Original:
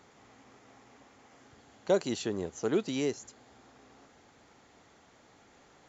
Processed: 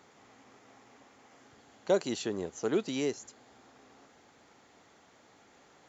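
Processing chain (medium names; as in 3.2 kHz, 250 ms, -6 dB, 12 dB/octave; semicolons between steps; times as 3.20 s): bass shelf 93 Hz -10 dB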